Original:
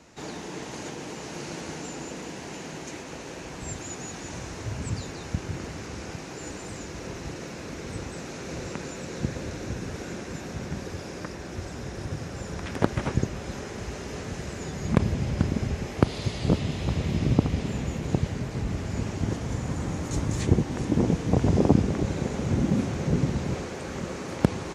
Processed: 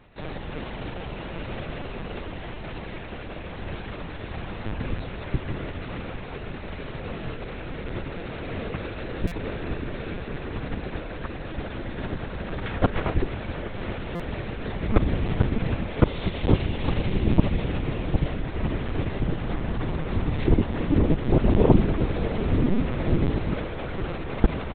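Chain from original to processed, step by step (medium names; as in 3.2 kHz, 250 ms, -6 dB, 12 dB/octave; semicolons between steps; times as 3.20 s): dynamic bell 120 Hz, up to -3 dB, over -38 dBFS, Q 3; in parallel at -5.5 dB: bit crusher 6-bit; on the sum: delay 831 ms -19 dB; LPC vocoder at 8 kHz pitch kept; buffer glitch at 9.27/14.15 s, samples 256, times 7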